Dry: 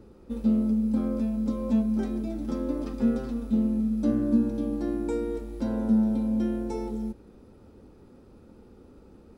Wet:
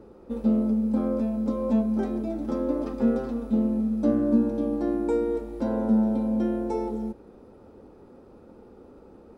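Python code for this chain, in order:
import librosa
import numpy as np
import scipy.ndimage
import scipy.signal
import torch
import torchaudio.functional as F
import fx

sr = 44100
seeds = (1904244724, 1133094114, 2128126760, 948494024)

y = fx.peak_eq(x, sr, hz=670.0, db=11.0, octaves=2.8)
y = y * librosa.db_to_amplitude(-4.0)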